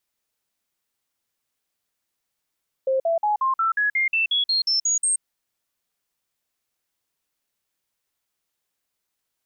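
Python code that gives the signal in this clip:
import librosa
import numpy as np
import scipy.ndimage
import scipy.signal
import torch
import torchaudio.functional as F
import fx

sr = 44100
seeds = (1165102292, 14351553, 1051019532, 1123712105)

y = fx.stepped_sweep(sr, from_hz=529.0, direction='up', per_octave=3, tones=13, dwell_s=0.13, gap_s=0.05, level_db=-18.0)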